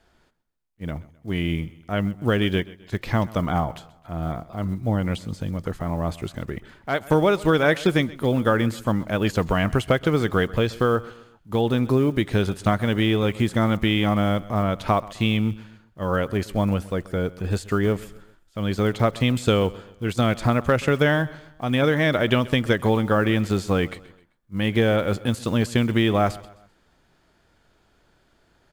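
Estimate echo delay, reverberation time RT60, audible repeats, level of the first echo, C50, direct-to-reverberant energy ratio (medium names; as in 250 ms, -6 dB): 130 ms, no reverb, 2, -20.0 dB, no reverb, no reverb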